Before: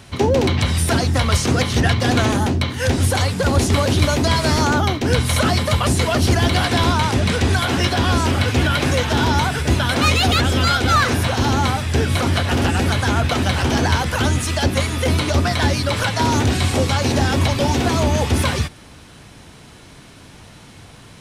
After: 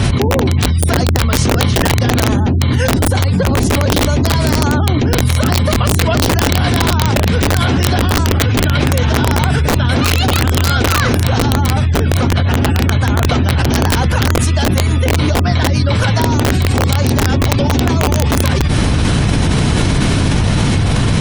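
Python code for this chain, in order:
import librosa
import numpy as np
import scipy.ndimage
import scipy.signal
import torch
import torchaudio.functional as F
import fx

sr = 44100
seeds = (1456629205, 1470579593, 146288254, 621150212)

y = fx.spec_gate(x, sr, threshold_db=-30, keep='strong')
y = fx.low_shelf(y, sr, hz=270.0, db=10.5)
y = (np.mod(10.0 ** (2.5 / 20.0) * y + 1.0, 2.0) - 1.0) / 10.0 ** (2.5 / 20.0)
y = fx.env_flatten(y, sr, amount_pct=100)
y = y * librosa.db_to_amplitude(-7.0)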